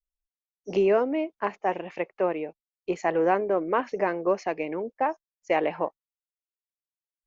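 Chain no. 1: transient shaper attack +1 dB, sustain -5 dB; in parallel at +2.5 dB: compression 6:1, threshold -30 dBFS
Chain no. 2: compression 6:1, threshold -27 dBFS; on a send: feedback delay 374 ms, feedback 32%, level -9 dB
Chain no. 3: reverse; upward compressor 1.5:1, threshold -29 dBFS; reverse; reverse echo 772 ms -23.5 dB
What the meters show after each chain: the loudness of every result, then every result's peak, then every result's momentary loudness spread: -24.0 LUFS, -33.0 LUFS, -27.5 LUFS; -8.0 dBFS, -16.5 dBFS, -12.0 dBFS; 9 LU, 10 LU, 12 LU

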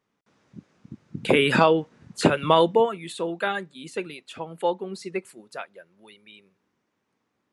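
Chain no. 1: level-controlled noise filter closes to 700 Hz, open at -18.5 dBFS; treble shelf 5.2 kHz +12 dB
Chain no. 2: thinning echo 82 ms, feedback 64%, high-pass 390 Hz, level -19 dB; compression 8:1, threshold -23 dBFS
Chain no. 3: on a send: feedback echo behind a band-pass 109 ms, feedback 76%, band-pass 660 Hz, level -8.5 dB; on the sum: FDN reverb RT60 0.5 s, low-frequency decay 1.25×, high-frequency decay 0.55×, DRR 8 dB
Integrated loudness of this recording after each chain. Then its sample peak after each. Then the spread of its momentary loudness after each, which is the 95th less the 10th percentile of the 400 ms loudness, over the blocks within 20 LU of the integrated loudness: -23.0 LUFS, -31.5 LUFS, -22.0 LUFS; -3.5 dBFS, -11.5 dBFS, -2.0 dBFS; 22 LU, 22 LU, 19 LU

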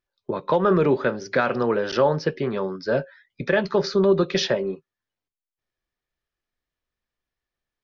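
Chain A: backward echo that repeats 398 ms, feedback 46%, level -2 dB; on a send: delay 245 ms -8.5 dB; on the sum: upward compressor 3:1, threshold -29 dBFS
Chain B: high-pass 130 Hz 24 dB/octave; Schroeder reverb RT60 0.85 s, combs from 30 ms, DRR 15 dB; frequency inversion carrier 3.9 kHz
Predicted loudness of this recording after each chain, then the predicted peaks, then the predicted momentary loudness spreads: -20.5 LUFS, -19.0 LUFS; -4.5 dBFS, -8.0 dBFS; 19 LU, 12 LU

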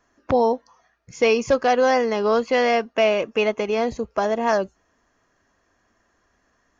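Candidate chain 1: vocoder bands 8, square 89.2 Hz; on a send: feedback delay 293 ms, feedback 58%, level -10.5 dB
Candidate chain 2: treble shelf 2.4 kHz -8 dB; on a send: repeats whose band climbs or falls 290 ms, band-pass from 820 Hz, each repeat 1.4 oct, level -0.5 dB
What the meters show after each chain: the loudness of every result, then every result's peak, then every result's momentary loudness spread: -22.5 LUFS, -21.0 LUFS; -7.0 dBFS, -6.0 dBFS; 15 LU, 7 LU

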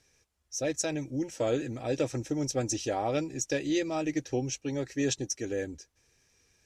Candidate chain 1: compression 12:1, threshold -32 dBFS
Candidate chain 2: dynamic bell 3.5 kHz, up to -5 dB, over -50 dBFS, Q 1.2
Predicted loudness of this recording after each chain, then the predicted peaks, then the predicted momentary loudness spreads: -37.0 LUFS, -32.0 LUFS; -21.0 dBFS, -17.0 dBFS; 3 LU, 5 LU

